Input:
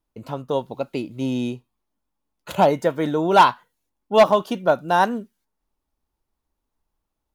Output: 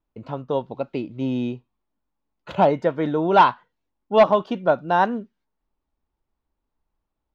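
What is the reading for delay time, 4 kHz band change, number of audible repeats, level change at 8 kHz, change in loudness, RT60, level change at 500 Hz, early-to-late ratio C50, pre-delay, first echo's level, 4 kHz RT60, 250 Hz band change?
no echo audible, −4.5 dB, no echo audible, below −15 dB, −1.0 dB, no reverb audible, −0.5 dB, no reverb audible, no reverb audible, no echo audible, no reverb audible, −0.5 dB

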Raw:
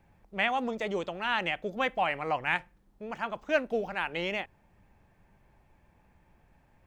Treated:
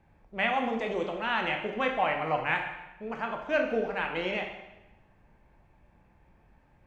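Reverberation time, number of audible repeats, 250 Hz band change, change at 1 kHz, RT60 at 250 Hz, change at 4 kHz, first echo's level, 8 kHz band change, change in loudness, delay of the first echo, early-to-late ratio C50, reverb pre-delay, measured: 0.95 s, no echo audible, +2.0 dB, +1.5 dB, 1.1 s, −1.0 dB, no echo audible, can't be measured, +1.0 dB, no echo audible, 6.0 dB, 5 ms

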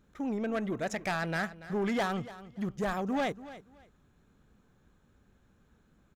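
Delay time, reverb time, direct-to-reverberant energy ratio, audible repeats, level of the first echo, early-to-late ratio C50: 286 ms, no reverb audible, no reverb audible, 2, −16.0 dB, no reverb audible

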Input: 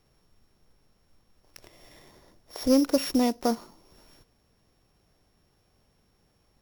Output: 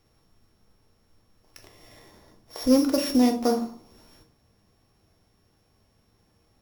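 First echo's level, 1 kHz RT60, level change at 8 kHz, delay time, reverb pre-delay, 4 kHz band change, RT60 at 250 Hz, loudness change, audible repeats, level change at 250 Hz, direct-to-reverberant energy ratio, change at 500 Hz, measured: no echo audible, 0.45 s, +1.0 dB, no echo audible, 3 ms, +1.5 dB, 0.70 s, +2.5 dB, no echo audible, +3.0 dB, 3.5 dB, +2.0 dB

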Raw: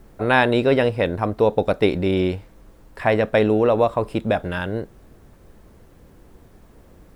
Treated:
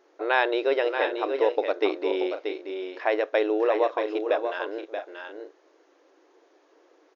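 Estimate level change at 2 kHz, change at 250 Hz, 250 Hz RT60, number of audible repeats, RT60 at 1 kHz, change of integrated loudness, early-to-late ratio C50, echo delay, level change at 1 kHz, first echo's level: −4.5 dB, −9.5 dB, no reverb audible, 2, no reverb audible, −6.0 dB, no reverb audible, 631 ms, −4.5 dB, −7.0 dB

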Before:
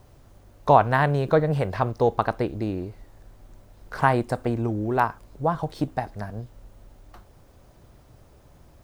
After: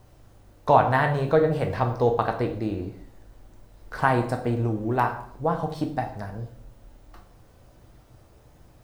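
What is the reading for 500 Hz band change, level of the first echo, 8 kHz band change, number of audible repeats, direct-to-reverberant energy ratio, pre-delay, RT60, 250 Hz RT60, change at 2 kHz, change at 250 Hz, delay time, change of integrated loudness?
0.0 dB, no echo audible, can't be measured, no echo audible, 3.5 dB, 6 ms, 0.60 s, 0.70 s, −0.5 dB, −0.5 dB, no echo audible, −0.5 dB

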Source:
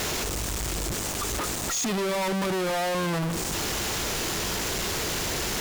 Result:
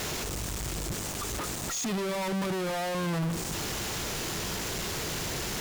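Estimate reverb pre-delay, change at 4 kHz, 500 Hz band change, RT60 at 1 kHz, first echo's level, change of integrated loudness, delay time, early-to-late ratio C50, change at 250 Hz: no reverb audible, −5.0 dB, −4.5 dB, no reverb audible, no echo audible, −4.5 dB, no echo audible, no reverb audible, −2.5 dB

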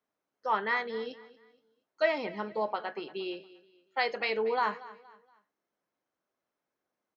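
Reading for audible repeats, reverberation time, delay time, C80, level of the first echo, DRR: 2, no reverb audible, 235 ms, no reverb audible, −18.5 dB, no reverb audible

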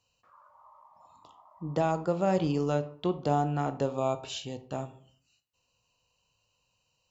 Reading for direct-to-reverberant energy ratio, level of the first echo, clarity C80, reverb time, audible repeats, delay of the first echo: 10.0 dB, no echo audible, 19.5 dB, 0.55 s, no echo audible, no echo audible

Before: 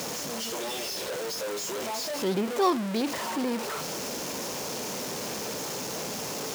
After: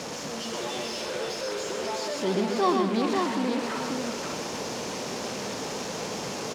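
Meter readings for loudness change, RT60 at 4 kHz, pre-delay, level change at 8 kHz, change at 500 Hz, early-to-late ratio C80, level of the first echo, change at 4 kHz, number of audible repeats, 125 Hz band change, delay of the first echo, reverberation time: +1.0 dB, no reverb audible, no reverb audible, −3.0 dB, +2.0 dB, no reverb audible, −5.0 dB, 0.0 dB, 4, +2.5 dB, 124 ms, no reverb audible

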